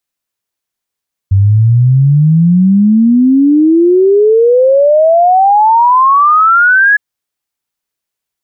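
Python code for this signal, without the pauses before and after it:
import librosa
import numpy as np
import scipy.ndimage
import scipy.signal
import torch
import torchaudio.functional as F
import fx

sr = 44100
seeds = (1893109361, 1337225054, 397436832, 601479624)

y = fx.ess(sr, length_s=5.66, from_hz=95.0, to_hz=1700.0, level_db=-4.0)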